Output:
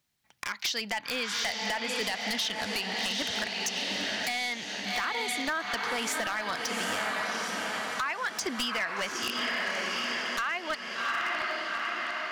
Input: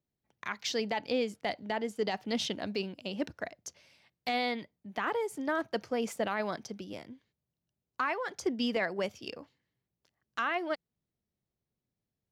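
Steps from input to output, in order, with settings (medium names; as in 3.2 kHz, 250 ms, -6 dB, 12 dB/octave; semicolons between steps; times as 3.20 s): peaking EQ 440 Hz -13 dB 1.8 oct; echo that smears into a reverb 781 ms, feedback 54%, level -6 dB; overdrive pedal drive 16 dB, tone 7.9 kHz, clips at -11 dBFS; compression 16:1, threshold -34 dBFS, peak gain reduction 13.5 dB; wavefolder -30.5 dBFS; trim +7.5 dB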